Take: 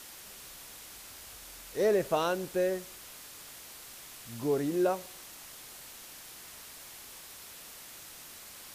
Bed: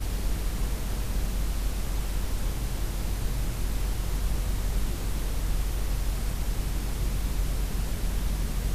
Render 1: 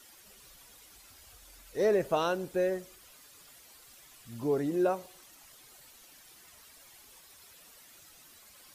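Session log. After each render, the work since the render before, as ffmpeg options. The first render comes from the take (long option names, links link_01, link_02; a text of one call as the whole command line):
ffmpeg -i in.wav -af "afftdn=noise_reduction=11:noise_floor=-49" out.wav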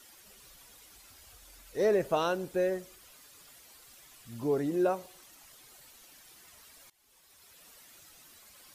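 ffmpeg -i in.wav -filter_complex "[0:a]asplit=2[link_01][link_02];[link_01]atrim=end=6.9,asetpts=PTS-STARTPTS,afade=type=out:start_time=6.896:duration=0.004:curve=hsin:silence=0.0891251[link_03];[link_02]atrim=start=6.9,asetpts=PTS-STARTPTS,afade=type=in:duration=0.79:silence=0.0891251[link_04];[link_03][link_04]concat=n=2:v=0:a=1" out.wav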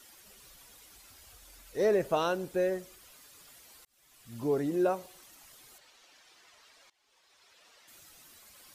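ffmpeg -i in.wav -filter_complex "[0:a]asettb=1/sr,asplit=3[link_01][link_02][link_03];[link_01]atrim=end=5.784[link_04];[link_02]atrim=start=5.78:end=7.88,asetpts=PTS-STARTPTS,afade=type=in:duration=0.004:curve=qsin,afade=type=out:start_time=2.096:duration=0.004:curve=qsin,acrossover=split=350 6500:gain=0.224 1 0.1[link_05][link_06][link_07];[link_05][link_06][link_07]amix=inputs=3:normalize=0[link_08];[link_03]atrim=start=7.876[link_09];[link_04][link_08]acrossfade=duration=0.004:curve1=hsin:curve2=qsin[link_10];[link_10][link_09]acrossfade=duration=0.004:curve1=qsin:curve2=hsin,asplit=2[link_11][link_12];[link_11]atrim=end=3.85,asetpts=PTS-STARTPTS,afade=type=out:start_time=3.846:duration=0.004:curve=hsin[link_13];[link_12]atrim=start=3.85,asetpts=PTS-STARTPTS,afade=type=in:duration=0.54[link_14];[link_13][link_14]concat=n=2:v=0:a=1" out.wav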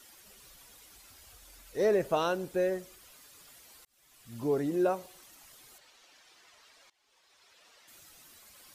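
ffmpeg -i in.wav -af anull out.wav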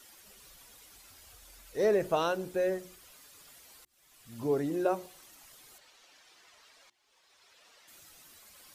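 ffmpeg -i in.wav -af "bandreject=frequency=60:width_type=h:width=6,bandreject=frequency=120:width_type=h:width=6,bandreject=frequency=180:width_type=h:width=6,bandreject=frequency=240:width_type=h:width=6,bandreject=frequency=300:width_type=h:width=6,bandreject=frequency=360:width_type=h:width=6" out.wav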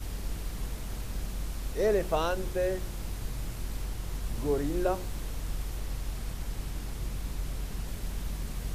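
ffmpeg -i in.wav -i bed.wav -filter_complex "[1:a]volume=-6.5dB[link_01];[0:a][link_01]amix=inputs=2:normalize=0" out.wav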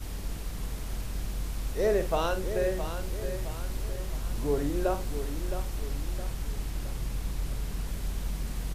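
ffmpeg -i in.wav -filter_complex "[0:a]asplit=2[link_01][link_02];[link_02]adelay=49,volume=-10.5dB[link_03];[link_01][link_03]amix=inputs=2:normalize=0,aecho=1:1:666|1332|1998|2664|3330:0.335|0.151|0.0678|0.0305|0.0137" out.wav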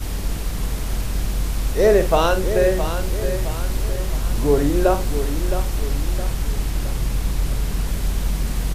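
ffmpeg -i in.wav -af "volume=11dB" out.wav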